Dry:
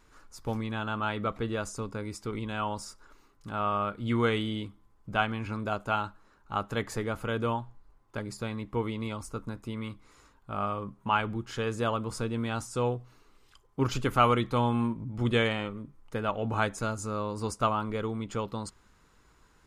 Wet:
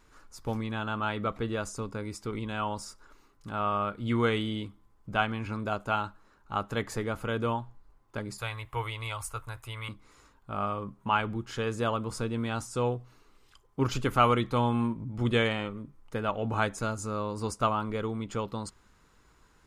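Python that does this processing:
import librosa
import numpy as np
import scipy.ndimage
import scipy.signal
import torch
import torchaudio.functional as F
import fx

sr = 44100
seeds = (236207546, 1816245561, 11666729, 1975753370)

y = fx.curve_eq(x, sr, hz=(120.0, 200.0, 710.0, 2900.0, 5400.0, 11000.0), db=(0, -23, 2, 7, 0, 11), at=(8.38, 9.89))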